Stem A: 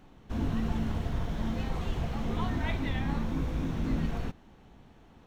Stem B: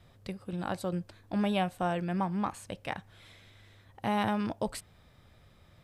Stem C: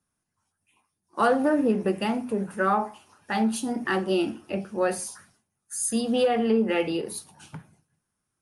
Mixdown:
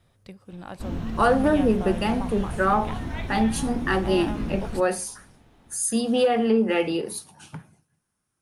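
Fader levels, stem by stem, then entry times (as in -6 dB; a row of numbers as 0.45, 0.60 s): -0.5, -4.5, +2.0 dB; 0.50, 0.00, 0.00 s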